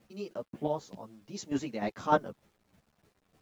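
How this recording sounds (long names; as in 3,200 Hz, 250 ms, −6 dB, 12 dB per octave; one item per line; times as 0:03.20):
chopped level 3.3 Hz, depth 60%, duty 20%
a quantiser's noise floor 12 bits, dither none
a shimmering, thickened sound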